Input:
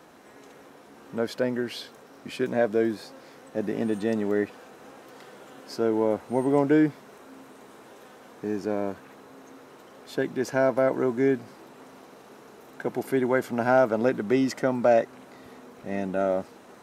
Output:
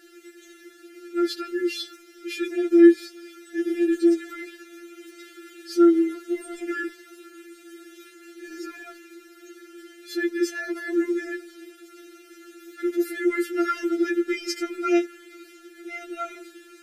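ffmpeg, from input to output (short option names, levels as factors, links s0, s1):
-af "asuperstop=centerf=870:order=8:qfactor=1.1,adynamicequalizer=threshold=0.00316:dfrequency=1000:dqfactor=4.5:tfrequency=1000:tqfactor=4.5:attack=5:release=100:ratio=0.375:range=2.5:mode=boostabove:tftype=bell,afftfilt=real='re*4*eq(mod(b,16),0)':imag='im*4*eq(mod(b,16),0)':win_size=2048:overlap=0.75,volume=2.37"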